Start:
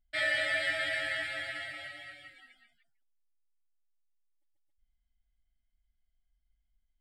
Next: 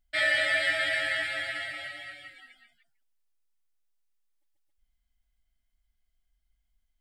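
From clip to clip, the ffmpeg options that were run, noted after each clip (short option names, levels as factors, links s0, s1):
-af "lowshelf=f=420:g=-3.5,volume=1.78"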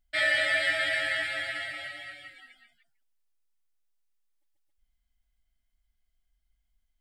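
-af anull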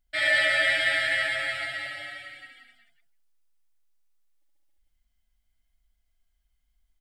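-af "aecho=1:1:69.97|177.8:0.794|0.631"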